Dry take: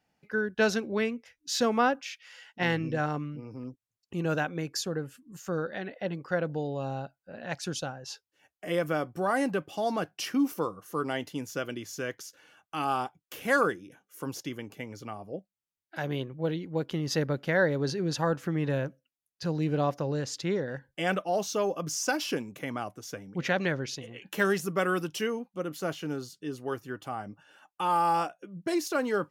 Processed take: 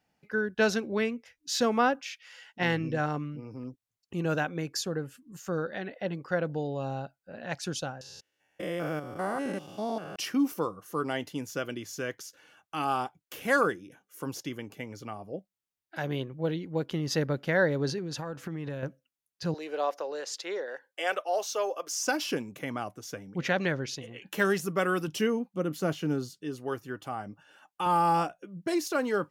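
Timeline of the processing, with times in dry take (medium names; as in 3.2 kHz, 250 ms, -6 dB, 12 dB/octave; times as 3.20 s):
8.01–10.16 s: spectrogram pixelated in time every 200 ms
17.98–18.83 s: compression 10:1, threshold -31 dBFS
19.54–21.97 s: high-pass 430 Hz 24 dB/octave
25.07–26.33 s: peaking EQ 180 Hz +6.5 dB 2.3 oct
27.86–28.40 s: bass shelf 200 Hz +11.5 dB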